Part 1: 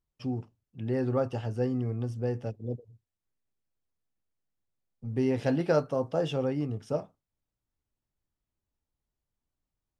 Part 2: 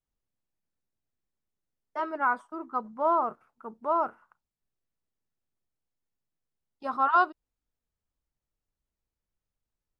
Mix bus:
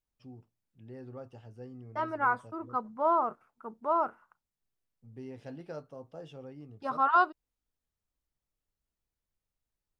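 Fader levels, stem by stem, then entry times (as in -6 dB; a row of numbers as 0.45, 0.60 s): -17.0, -1.5 dB; 0.00, 0.00 s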